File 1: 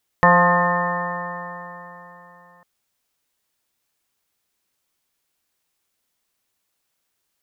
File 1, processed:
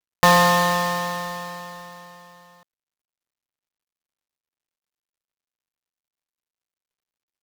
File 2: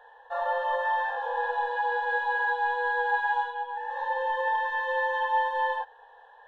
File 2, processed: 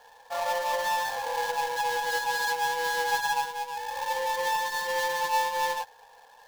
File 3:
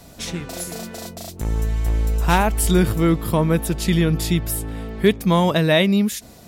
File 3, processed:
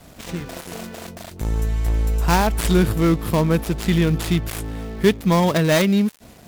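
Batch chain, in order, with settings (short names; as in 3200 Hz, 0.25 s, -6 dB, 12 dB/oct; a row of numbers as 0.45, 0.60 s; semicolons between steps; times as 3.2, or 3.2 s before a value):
switching dead time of 0.13 ms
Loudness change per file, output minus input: -0.5, -0.5, 0.0 LU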